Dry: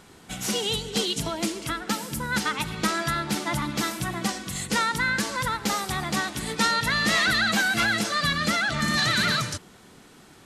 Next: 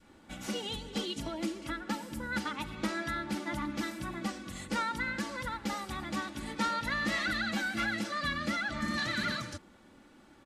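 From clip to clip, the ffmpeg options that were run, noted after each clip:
-af "highshelf=f=3.5k:g=-12,aecho=1:1:3.5:0.59,adynamicequalizer=threshold=0.0158:dfrequency=790:dqfactor=0.8:tfrequency=790:tqfactor=0.8:attack=5:release=100:ratio=0.375:range=2:mode=cutabove:tftype=bell,volume=-7dB"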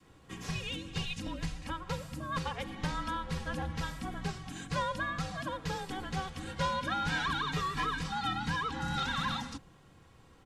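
-filter_complex "[0:a]acrossover=split=8200[a][b];[b]acompressor=threshold=-59dB:ratio=4:attack=1:release=60[c];[a][c]amix=inputs=2:normalize=0,afreqshift=-370,bandreject=f=50:t=h:w=6,bandreject=f=100:t=h:w=6,bandreject=f=150:t=h:w=6"

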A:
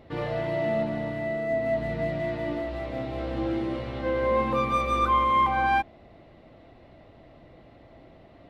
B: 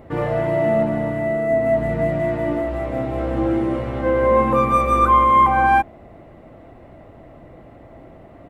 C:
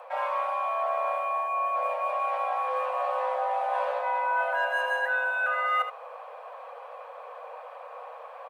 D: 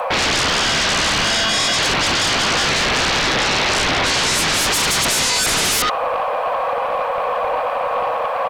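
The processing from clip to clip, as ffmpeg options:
-af "firequalizer=gain_entry='entry(1300,0);entry(4100,-14);entry(7600,2)':delay=0.05:min_phase=1,volume=8.5dB"
-af "areverse,acompressor=threshold=-26dB:ratio=6,areverse,afreqshift=450,aecho=1:1:76:0.299"
-af "aeval=exprs='0.15*sin(PI/2*7.94*val(0)/0.15)':c=same,volume=2dB"

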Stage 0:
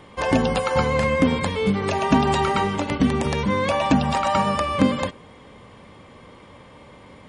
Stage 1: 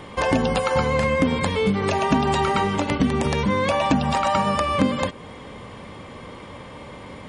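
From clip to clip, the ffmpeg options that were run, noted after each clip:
-af "acompressor=threshold=-30dB:ratio=2,volume=7dB"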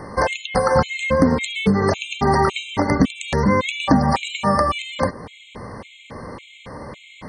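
-af "afftfilt=real='re*gt(sin(2*PI*1.8*pts/sr)*(1-2*mod(floor(b*sr/1024/2100),2)),0)':imag='im*gt(sin(2*PI*1.8*pts/sr)*(1-2*mod(floor(b*sr/1024/2100),2)),0)':win_size=1024:overlap=0.75,volume=5dB"

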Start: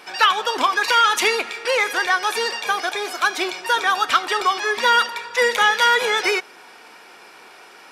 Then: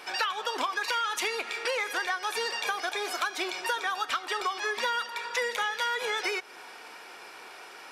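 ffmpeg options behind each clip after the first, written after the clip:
-af "equalizer=f=190:t=o:w=1.2:g=-5.5,bandreject=f=50:t=h:w=6,bandreject=f=100:t=h:w=6,acompressor=threshold=-26dB:ratio=6,volume=-1.5dB"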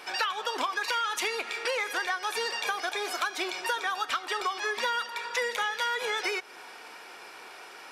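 -af anull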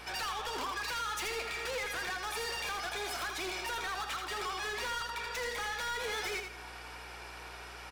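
-af "asoftclip=type=hard:threshold=-33.5dB,aeval=exprs='val(0)+0.00224*(sin(2*PI*60*n/s)+sin(2*PI*2*60*n/s)/2+sin(2*PI*3*60*n/s)/3+sin(2*PI*4*60*n/s)/4+sin(2*PI*5*60*n/s)/5)':c=same,aecho=1:1:81|162|243|324:0.501|0.145|0.0421|0.0122,volume=-2dB"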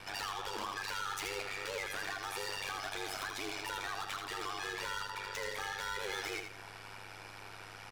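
-af "aeval=exprs='val(0)*sin(2*PI*49*n/s)':c=same"

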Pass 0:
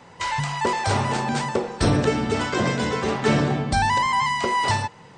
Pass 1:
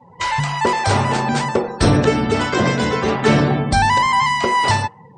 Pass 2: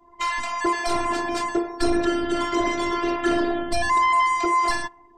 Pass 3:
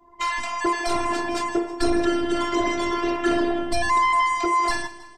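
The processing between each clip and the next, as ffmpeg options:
-af "afftdn=nr=28:nf=-42,volume=5.5dB"
-af "afftfilt=real='hypot(re,im)*cos(PI*b)':imag='0':win_size=512:overlap=0.75,acontrast=73,volume=-7.5dB"
-af "aecho=1:1:160|320|480|640|800:0.158|0.0808|0.0412|0.021|0.0107"

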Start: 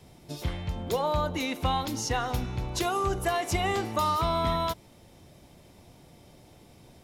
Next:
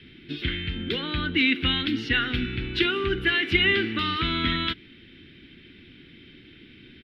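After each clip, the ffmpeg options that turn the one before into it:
-af "firequalizer=gain_entry='entry(150,0);entry(250,9);entry(360,7);entry(610,-19);entry(970,-16);entry(1500,12);entry(3200,15);entry(6600,-26);entry(14000,-23)':delay=0.05:min_phase=1"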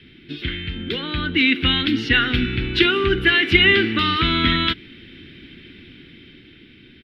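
-af "dynaudnorm=f=270:g=11:m=7dB,volume=1.5dB"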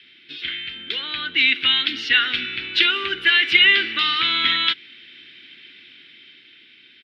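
-af "bandpass=f=3.9k:t=q:w=0.62:csg=0,volume=3dB"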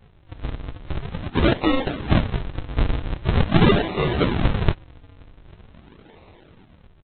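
-af "aresample=8000,acrusher=samples=24:mix=1:aa=0.000001:lfo=1:lforange=38.4:lforate=0.44,aresample=44100" -ar 44100 -c:a libvorbis -b:a 32k

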